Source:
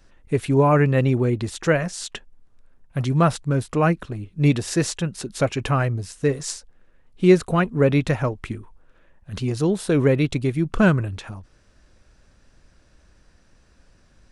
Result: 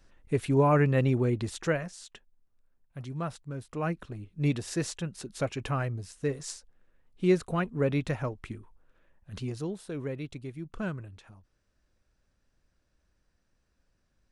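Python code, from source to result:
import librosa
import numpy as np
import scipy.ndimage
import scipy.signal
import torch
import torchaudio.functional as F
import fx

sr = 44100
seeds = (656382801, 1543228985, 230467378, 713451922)

y = fx.gain(x, sr, db=fx.line((1.57, -6.0), (2.08, -16.5), (3.58, -16.5), (4.04, -9.5), (9.43, -9.5), (9.86, -17.5)))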